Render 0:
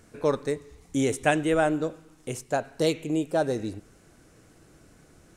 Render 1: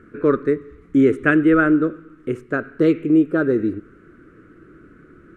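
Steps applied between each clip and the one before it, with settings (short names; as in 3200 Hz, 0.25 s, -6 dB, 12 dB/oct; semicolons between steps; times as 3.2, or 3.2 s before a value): EQ curve 120 Hz 0 dB, 370 Hz +10 dB, 840 Hz -17 dB, 1300 Hz +11 dB, 5400 Hz -23 dB; gain +4 dB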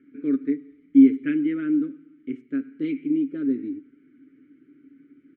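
vowel filter i; comb 7.3 ms, depth 49%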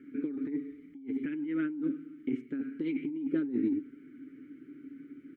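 negative-ratio compressor -31 dBFS, ratio -1; gain -3 dB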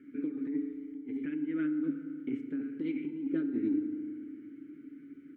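FDN reverb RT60 2.4 s, low-frequency decay 1.3×, high-frequency decay 0.55×, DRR 8.5 dB; gain -3 dB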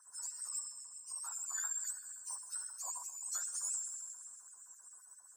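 spectrum mirrored in octaves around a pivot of 1500 Hz; LFO high-pass sine 7.6 Hz 420–2700 Hz; gain -1.5 dB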